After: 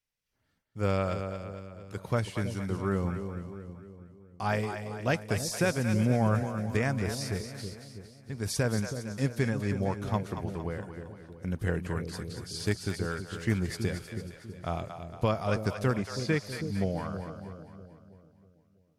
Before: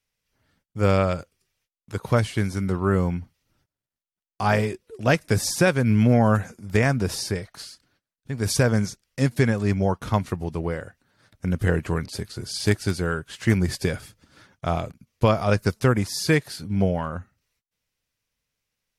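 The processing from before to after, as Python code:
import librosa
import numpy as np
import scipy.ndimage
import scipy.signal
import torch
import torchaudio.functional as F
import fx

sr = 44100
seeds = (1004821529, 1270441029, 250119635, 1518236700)

y = fx.air_absorb(x, sr, metres=71.0, at=(15.97, 16.4))
y = fx.echo_split(y, sr, split_hz=550.0, low_ms=323, high_ms=229, feedback_pct=52, wet_db=-8)
y = F.gain(torch.from_numpy(y), -8.5).numpy()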